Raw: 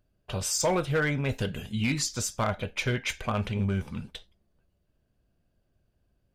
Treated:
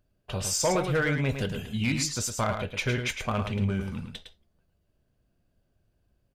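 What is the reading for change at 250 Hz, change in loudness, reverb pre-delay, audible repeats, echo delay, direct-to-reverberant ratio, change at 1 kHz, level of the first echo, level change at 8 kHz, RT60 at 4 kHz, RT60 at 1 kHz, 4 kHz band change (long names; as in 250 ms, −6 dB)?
+1.0 dB, +0.5 dB, no reverb audible, 1, 108 ms, no reverb audible, +0.5 dB, −7.0 dB, +1.0 dB, no reverb audible, no reverb audible, +0.5 dB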